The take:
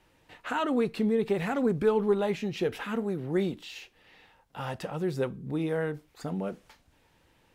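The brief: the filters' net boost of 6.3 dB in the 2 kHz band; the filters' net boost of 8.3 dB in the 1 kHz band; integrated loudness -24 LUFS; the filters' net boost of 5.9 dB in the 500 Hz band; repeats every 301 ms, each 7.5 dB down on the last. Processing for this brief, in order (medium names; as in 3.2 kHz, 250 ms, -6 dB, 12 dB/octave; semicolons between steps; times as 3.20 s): peaking EQ 500 Hz +5.5 dB; peaking EQ 1 kHz +7.5 dB; peaking EQ 2 kHz +5 dB; feedback delay 301 ms, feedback 42%, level -7.5 dB; trim +0.5 dB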